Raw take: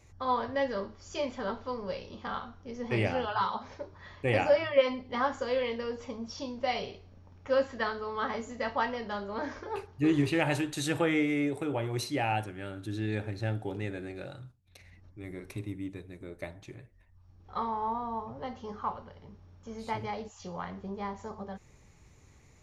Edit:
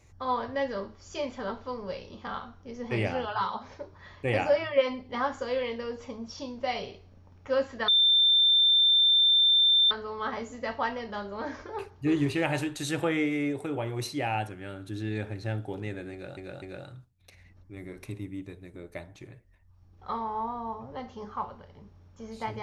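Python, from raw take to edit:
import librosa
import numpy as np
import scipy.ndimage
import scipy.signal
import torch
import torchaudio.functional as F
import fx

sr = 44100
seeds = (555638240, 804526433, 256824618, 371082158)

y = fx.edit(x, sr, fx.insert_tone(at_s=7.88, length_s=2.03, hz=3570.0, db=-18.0),
    fx.repeat(start_s=14.09, length_s=0.25, count=3), tone=tone)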